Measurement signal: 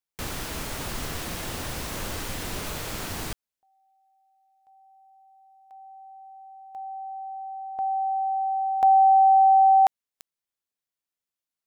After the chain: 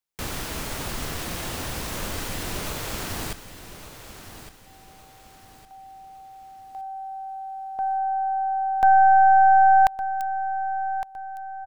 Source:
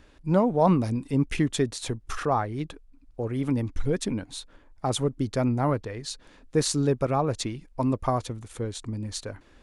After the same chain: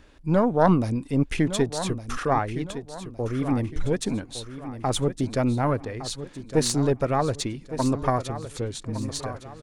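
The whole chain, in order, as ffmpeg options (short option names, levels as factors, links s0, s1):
-af "aeval=exprs='0.355*(cos(1*acos(clip(val(0)/0.355,-1,1)))-cos(1*PI/2))+0.1*(cos(2*acos(clip(val(0)/0.355,-1,1)))-cos(2*PI/2))':c=same,aecho=1:1:1161|2322|3483|4644:0.251|0.0955|0.0363|0.0138,volume=1.19"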